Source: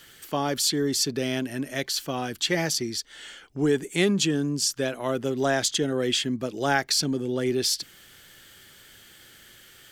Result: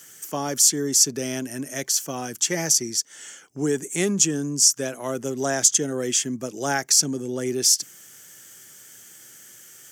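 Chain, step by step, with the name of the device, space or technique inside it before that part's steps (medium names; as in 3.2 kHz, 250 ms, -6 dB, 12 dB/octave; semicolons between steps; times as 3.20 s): budget condenser microphone (high-pass 110 Hz 24 dB/octave; resonant high shelf 5 kHz +7.5 dB, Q 3); trim -1 dB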